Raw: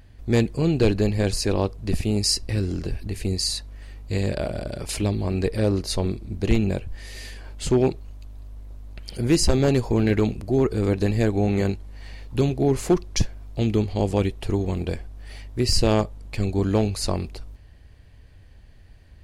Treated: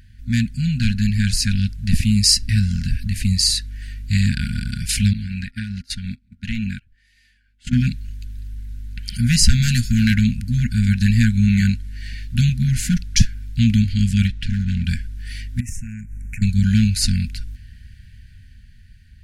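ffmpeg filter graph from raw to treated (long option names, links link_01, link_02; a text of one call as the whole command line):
ffmpeg -i in.wav -filter_complex "[0:a]asettb=1/sr,asplit=3[link_01][link_02][link_03];[link_01]atrim=end=5.134[link_04];[link_02]atrim=start=5.13:end=7.73,asetpts=PTS-STARTPTS,afade=type=in:duration=0.004:curve=qsin,afade=type=out:start_time=2.596:duration=0.004:curve=qsin,bass=frequency=250:gain=-9,treble=frequency=4000:gain=-9,acompressor=threshold=-26dB:ratio=4:attack=3.2:release=140:knee=1:detection=peak,agate=range=-24dB:threshold=-34dB:ratio=16:release=100:detection=peak[link_05];[link_03]atrim=start=7.726[link_06];[link_04][link_05]acrossfade=duration=0.004:curve1=hsin:curve2=qsin[link_07];[link_07][link_06]acrossfade=duration=0.004:curve1=qsin:curve2=hsin,asettb=1/sr,asplit=3[link_08][link_09][link_10];[link_08]atrim=end=9.624[link_11];[link_09]atrim=start=9.62:end=10.14,asetpts=PTS-STARTPTS,afade=type=in:duration=0.004:curve=qsin,afade=type=out:start_time=0.516:duration=0.004:curve=qsin,highshelf=frequency=3900:gain=8.5,aeval=exprs='clip(val(0),-1,0.15)':channel_layout=same[link_12];[link_10]atrim=start=10.136[link_13];[link_11][link_12]acrossfade=duration=0.004:curve1=hsin:curve2=qsin[link_14];[link_14][link_13]acrossfade=duration=0.004:curve1=qsin:curve2=hsin,asettb=1/sr,asplit=3[link_15][link_16][link_17];[link_15]atrim=end=14.274[link_18];[link_16]atrim=start=14.27:end=14.85,asetpts=PTS-STARTPTS,afade=type=in:duration=0.004:curve=qsin,afade=type=out:start_time=0.576:duration=0.004:curve=qsin,lowpass=5200,asoftclip=type=hard:threshold=-23.5dB[link_19];[link_17]atrim=start=14.846[link_20];[link_18][link_19]acrossfade=duration=0.004:curve1=hsin:curve2=qsin[link_21];[link_21][link_20]acrossfade=duration=0.004:curve1=qsin:curve2=hsin,asettb=1/sr,asplit=3[link_22][link_23][link_24];[link_22]atrim=end=15.604[link_25];[link_23]atrim=start=15.6:end=16.42,asetpts=PTS-STARTPTS,afade=type=in:duration=0.004:curve=qsin,afade=type=out:start_time=0.816:duration=0.004:curve=qsin,asuperstop=centerf=3900:order=12:qfactor=1.2,acompressor=threshold=-34dB:ratio=6:attack=3.2:release=140:knee=1:detection=peak[link_26];[link_24]atrim=start=16.416[link_27];[link_25][link_26]acrossfade=duration=0.004:curve1=hsin:curve2=qsin[link_28];[link_28][link_27]acrossfade=duration=0.004:curve1=qsin:curve2=hsin,afftfilt=real='re*(1-between(b*sr/4096,250,1400))':imag='im*(1-between(b*sr/4096,250,1400))':win_size=4096:overlap=0.75,dynaudnorm=framelen=280:gausssize=9:maxgain=6dB,volume=2.5dB" out.wav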